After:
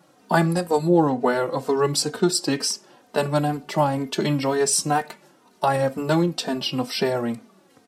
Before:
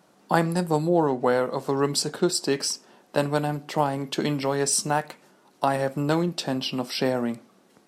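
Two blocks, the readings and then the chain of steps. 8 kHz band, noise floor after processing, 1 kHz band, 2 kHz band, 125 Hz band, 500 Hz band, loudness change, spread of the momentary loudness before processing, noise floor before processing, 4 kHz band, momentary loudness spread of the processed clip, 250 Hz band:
+2.5 dB, -58 dBFS, +2.5 dB, +2.5 dB, +3.0 dB, +2.5 dB, +2.5 dB, 6 LU, -60 dBFS, +2.5 dB, 7 LU, +3.0 dB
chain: endless flanger 3.1 ms -2.1 Hz; trim +5.5 dB

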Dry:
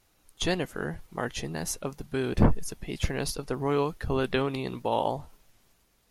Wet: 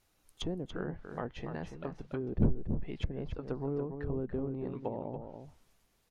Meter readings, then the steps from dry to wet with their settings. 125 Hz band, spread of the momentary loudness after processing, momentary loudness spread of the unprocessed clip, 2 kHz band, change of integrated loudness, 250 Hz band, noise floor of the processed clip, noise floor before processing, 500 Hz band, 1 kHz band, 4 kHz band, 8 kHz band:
-5.0 dB, 11 LU, 10 LU, -14.5 dB, -7.5 dB, -5.5 dB, -73 dBFS, -67 dBFS, -8.0 dB, -13.5 dB, -13.5 dB, under -20 dB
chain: low-pass that closes with the level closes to 400 Hz, closed at -24.5 dBFS; echo from a far wall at 49 m, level -7 dB; trim -6 dB

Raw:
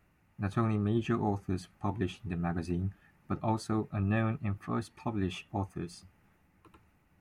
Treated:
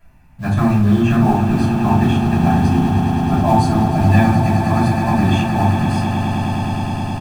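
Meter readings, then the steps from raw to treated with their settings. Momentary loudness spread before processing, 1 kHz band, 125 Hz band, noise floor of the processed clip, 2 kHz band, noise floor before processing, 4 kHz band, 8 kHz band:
9 LU, +20.5 dB, +19.0 dB, -43 dBFS, +18.0 dB, -69 dBFS, +18.0 dB, +17.0 dB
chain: comb 1.2 ms, depth 55%; in parallel at -4.5 dB: short-mantissa float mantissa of 2-bit; on the sum: echo with a slow build-up 104 ms, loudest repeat 8, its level -11 dB; simulated room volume 300 m³, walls furnished, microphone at 5.5 m

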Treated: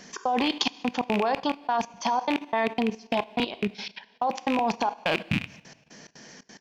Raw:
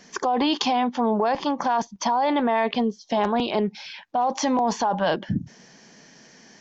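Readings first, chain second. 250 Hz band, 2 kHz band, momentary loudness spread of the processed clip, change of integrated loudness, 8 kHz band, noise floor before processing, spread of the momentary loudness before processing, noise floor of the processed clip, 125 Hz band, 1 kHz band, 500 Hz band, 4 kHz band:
-4.5 dB, +0.5 dB, 6 LU, -4.0 dB, no reading, -52 dBFS, 7 LU, -60 dBFS, -3.0 dB, -4.5 dB, -5.0 dB, -1.0 dB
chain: rattle on loud lows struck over -32 dBFS, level -15 dBFS; dynamic bell 3.8 kHz, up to +3 dB, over -40 dBFS, Q 1.4; in parallel at -2 dB: compression 12:1, threshold -35 dBFS, peak gain reduction 18.5 dB; on the sum: trance gate "xx.xxx.x.." 178 bpm -60 dB; two-slope reverb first 0.75 s, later 2.2 s, from -18 dB, DRR 12 dB; level held to a coarse grid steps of 12 dB

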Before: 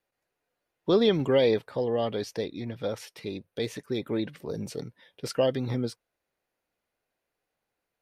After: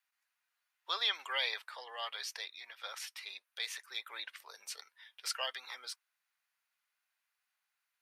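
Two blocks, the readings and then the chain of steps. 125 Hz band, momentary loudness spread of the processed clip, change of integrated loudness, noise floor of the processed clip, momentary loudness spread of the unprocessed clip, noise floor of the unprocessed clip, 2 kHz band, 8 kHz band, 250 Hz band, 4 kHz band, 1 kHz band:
under -40 dB, 14 LU, -10.5 dB, under -85 dBFS, 15 LU, -85 dBFS, +1.0 dB, +1.0 dB, under -40 dB, +1.0 dB, -5.5 dB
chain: high-pass 1.1 kHz 24 dB/octave; trim +1 dB

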